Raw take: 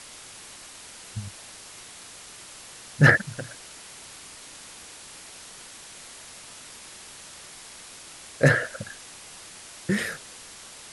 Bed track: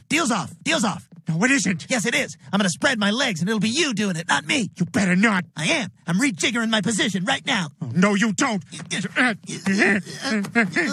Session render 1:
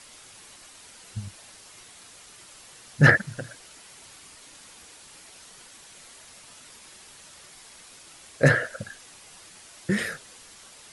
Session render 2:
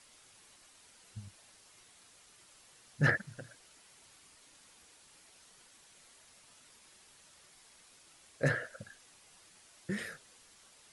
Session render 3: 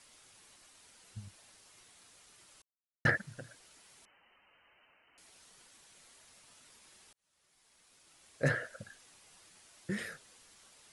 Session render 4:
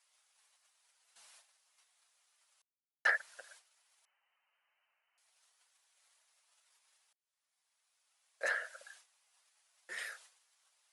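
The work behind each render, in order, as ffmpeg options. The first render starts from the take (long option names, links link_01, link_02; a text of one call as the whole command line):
ffmpeg -i in.wav -af "afftdn=noise_reduction=6:noise_floor=-45" out.wav
ffmpeg -i in.wav -af "volume=-12dB" out.wav
ffmpeg -i in.wav -filter_complex "[0:a]asettb=1/sr,asplit=3[link_01][link_02][link_03];[link_01]atrim=end=4.054[link_04];[link_02]atrim=start=4.05:end=5.18,asetpts=PTS-STARTPTS,afade=type=in:duration=0.004:curve=qsin,afade=type=out:start_time=1.126:duration=0.004:curve=qsin,lowpass=frequency=2600:width_type=q:width=0.5098,lowpass=frequency=2600:width_type=q:width=0.6013,lowpass=frequency=2600:width_type=q:width=0.9,lowpass=frequency=2600:width_type=q:width=2.563,afreqshift=-3100[link_05];[link_03]atrim=start=5.176[link_06];[link_04][link_05]acrossfade=duration=0.004:curve1=hsin:curve2=qsin[link_07];[link_07][link_06]acrossfade=duration=0.004:curve1=qsin:curve2=hsin,asplit=4[link_08][link_09][link_10][link_11];[link_08]atrim=end=2.62,asetpts=PTS-STARTPTS,afade=type=out:start_time=2.616:duration=0.004:curve=hsin[link_12];[link_09]atrim=start=2.62:end=3.05,asetpts=PTS-STARTPTS,volume=0[link_13];[link_10]atrim=start=3.05:end=7.13,asetpts=PTS-STARTPTS,afade=type=in:duration=0.004:curve=hsin,afade=type=out:start_time=4.076:duration=0.004:curve=hsin[link_14];[link_11]atrim=start=7.13,asetpts=PTS-STARTPTS,afade=type=in:duration=1.35[link_15];[link_12][link_13][link_14][link_15]concat=n=4:v=0:a=1" out.wav
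ffmpeg -i in.wav -af "agate=range=-14dB:threshold=-58dB:ratio=16:detection=peak,highpass=frequency=650:width=0.5412,highpass=frequency=650:width=1.3066" out.wav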